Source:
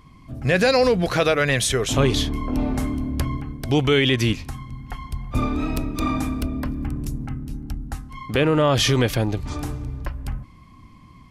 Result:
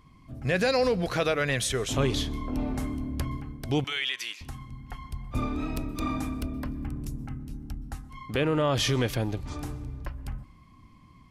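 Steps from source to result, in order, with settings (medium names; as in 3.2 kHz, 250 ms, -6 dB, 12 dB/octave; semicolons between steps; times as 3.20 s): 3.84–4.41 s: high-pass 1.4 kHz 12 dB/octave; on a send: reverberation RT60 0.50 s, pre-delay 112 ms, DRR 23.5 dB; on the sum: trim -7 dB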